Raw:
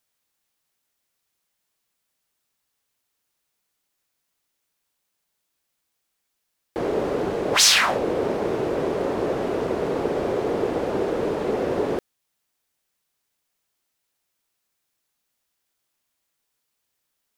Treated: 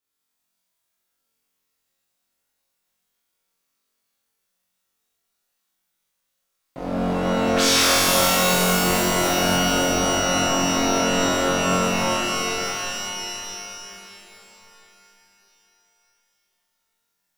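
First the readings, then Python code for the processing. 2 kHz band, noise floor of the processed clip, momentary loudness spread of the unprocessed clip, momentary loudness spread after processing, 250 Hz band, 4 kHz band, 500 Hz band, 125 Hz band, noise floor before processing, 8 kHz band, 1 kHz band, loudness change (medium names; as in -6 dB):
+5.0 dB, -77 dBFS, 10 LU, 14 LU, +4.5 dB, +4.0 dB, 0.0 dB, +7.5 dB, -77 dBFS, +6.0 dB, +6.5 dB, +3.0 dB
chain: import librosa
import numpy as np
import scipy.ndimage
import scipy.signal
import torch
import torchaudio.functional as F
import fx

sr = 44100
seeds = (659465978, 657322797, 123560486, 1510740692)

y = x * np.sin(2.0 * np.pi * 200.0 * np.arange(len(x)) / sr)
y = fx.room_flutter(y, sr, wall_m=3.8, rt60_s=1.4)
y = fx.rev_shimmer(y, sr, seeds[0], rt60_s=3.5, semitones=12, shimmer_db=-2, drr_db=-1.0)
y = y * librosa.db_to_amplitude(-7.5)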